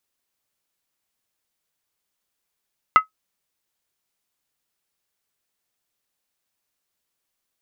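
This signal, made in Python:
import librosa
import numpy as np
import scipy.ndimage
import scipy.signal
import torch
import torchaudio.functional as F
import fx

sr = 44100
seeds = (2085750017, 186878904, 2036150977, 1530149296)

y = fx.strike_skin(sr, length_s=0.63, level_db=-4, hz=1280.0, decay_s=0.12, tilt_db=11.0, modes=5)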